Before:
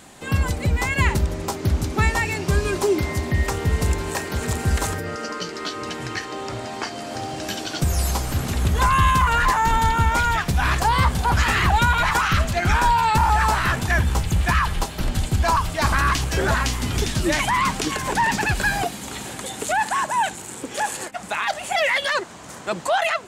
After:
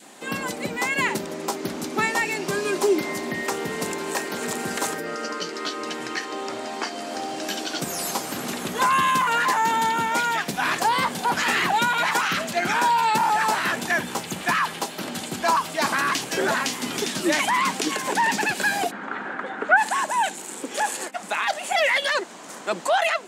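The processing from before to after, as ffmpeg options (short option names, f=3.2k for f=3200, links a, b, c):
-filter_complex "[0:a]asplit=3[a][b][c];[a]afade=t=out:st=18.9:d=0.02[d];[b]lowpass=f=1.5k:t=q:w=4.2,afade=t=in:st=18.9:d=0.02,afade=t=out:st=19.76:d=0.02[e];[c]afade=t=in:st=19.76:d=0.02[f];[d][e][f]amix=inputs=3:normalize=0,highpass=f=210:w=0.5412,highpass=f=210:w=1.3066,adynamicequalizer=threshold=0.02:dfrequency=1200:dqfactor=2.4:tfrequency=1200:tqfactor=2.4:attack=5:release=100:ratio=0.375:range=2.5:mode=cutabove:tftype=bell"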